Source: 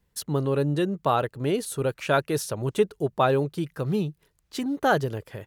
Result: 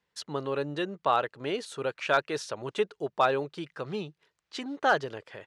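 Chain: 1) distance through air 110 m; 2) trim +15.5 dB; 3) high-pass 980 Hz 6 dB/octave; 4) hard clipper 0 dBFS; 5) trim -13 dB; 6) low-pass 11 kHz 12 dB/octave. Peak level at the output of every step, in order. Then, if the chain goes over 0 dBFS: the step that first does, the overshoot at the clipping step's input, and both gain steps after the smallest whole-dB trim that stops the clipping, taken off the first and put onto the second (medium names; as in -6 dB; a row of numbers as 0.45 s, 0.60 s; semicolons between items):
-9.0 dBFS, +6.5 dBFS, +3.5 dBFS, 0.0 dBFS, -13.0 dBFS, -13.0 dBFS; step 2, 3.5 dB; step 2 +11.5 dB, step 5 -9 dB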